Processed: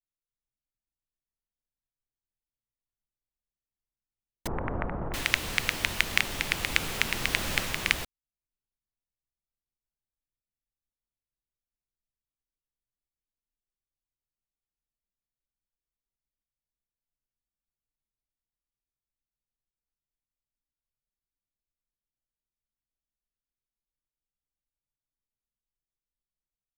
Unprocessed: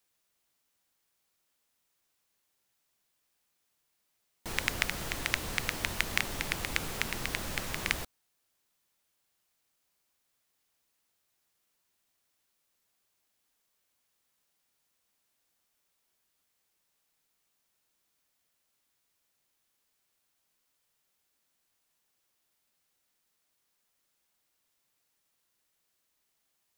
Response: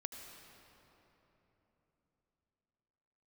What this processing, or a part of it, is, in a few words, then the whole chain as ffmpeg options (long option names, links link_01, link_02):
voice memo with heavy noise removal: -filter_complex "[0:a]adynamicequalizer=threshold=0.00631:dfrequency=2800:dqfactor=0.98:tfrequency=2800:tqfactor=0.98:attack=5:release=100:ratio=0.375:range=2.5:mode=boostabove:tftype=bell,asettb=1/sr,asplit=3[link_01][link_02][link_03];[link_01]atrim=end=4.474[link_04];[link_02]atrim=start=4.47:end=5.14,asetpts=PTS-STARTPTS,afade=type=in:duration=0.004:curve=qsin,afade=type=out:start_time=0.666:duration=0.004:curve=qsin,lowpass=frequency=1100:width=0.5412,lowpass=frequency=1100:width=1.3066[link_05];[link_03]atrim=start=5.136[link_06];[link_04][link_05]acrossfade=duration=0.004:curve1=hsin:curve2=qsin[link_07];[link_07][link_06]acrossfade=duration=0.004:curve1=qsin:curve2=hsin,anlmdn=0.0158,dynaudnorm=framelen=210:gausssize=3:maxgain=8dB"